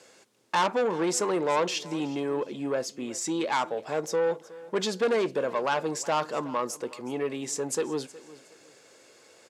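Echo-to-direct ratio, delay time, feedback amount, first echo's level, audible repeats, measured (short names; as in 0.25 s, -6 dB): -18.5 dB, 0.367 s, 29%, -19.0 dB, 2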